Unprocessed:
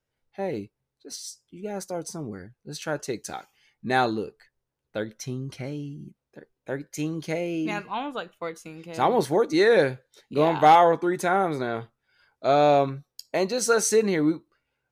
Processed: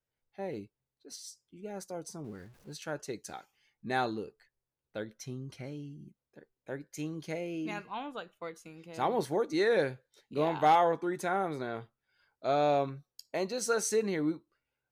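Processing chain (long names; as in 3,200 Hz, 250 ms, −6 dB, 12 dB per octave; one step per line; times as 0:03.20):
0:02.24–0:02.73: converter with a step at zero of −47.5 dBFS
level −8.5 dB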